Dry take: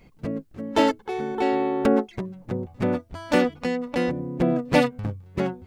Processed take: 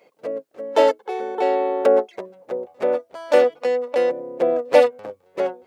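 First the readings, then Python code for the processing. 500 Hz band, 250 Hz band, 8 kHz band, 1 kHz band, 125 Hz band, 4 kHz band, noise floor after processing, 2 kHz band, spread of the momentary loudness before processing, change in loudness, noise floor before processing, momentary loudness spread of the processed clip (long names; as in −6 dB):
+7.5 dB, −8.5 dB, can't be measured, +3.0 dB, below −20 dB, −1.0 dB, −62 dBFS, −0.5 dB, 11 LU, +4.5 dB, −54 dBFS, 15 LU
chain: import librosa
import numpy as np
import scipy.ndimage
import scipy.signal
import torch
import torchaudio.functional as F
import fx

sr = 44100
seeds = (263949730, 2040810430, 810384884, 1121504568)

y = fx.highpass_res(x, sr, hz=520.0, q=3.5)
y = F.gain(torch.from_numpy(y), -1.0).numpy()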